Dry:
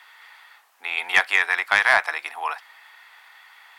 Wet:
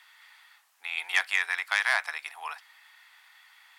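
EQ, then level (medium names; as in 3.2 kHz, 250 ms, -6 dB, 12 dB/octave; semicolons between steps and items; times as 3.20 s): high-pass 1.2 kHz 6 dB/octave; peaking EQ 8 kHz +5 dB 2.2 oct; -7.0 dB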